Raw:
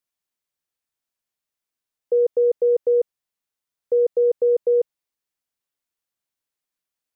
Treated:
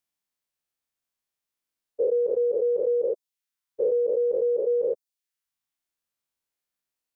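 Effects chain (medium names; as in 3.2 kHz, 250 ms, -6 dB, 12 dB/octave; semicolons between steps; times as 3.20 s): every event in the spectrogram widened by 240 ms; reverb removal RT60 0.67 s; trim -4.5 dB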